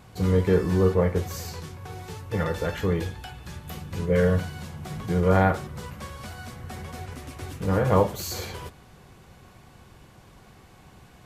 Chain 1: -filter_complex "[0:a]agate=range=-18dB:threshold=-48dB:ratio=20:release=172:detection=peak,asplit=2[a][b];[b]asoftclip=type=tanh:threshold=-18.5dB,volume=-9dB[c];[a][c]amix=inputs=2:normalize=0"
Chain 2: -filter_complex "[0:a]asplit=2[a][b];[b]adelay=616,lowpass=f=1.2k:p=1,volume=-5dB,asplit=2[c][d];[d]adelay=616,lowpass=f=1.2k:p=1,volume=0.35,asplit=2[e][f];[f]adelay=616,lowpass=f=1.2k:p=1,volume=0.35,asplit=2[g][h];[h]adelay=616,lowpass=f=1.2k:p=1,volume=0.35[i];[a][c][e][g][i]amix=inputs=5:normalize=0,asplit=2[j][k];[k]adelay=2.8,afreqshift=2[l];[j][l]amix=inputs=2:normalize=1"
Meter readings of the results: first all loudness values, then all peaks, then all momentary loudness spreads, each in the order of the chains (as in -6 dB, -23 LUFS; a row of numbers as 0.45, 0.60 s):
-23.5, -29.0 LUFS; -6.0, -12.0 dBFS; 17, 16 LU